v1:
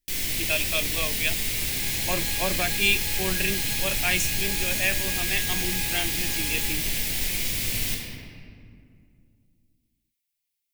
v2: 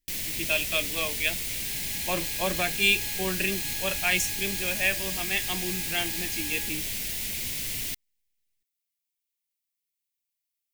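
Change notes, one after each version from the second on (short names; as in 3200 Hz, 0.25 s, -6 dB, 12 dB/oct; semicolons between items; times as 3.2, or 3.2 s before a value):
reverb: off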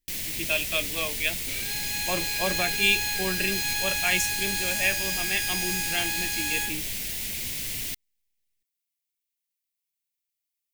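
second sound +11.5 dB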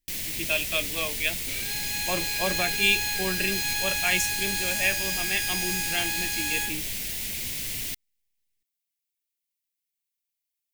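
none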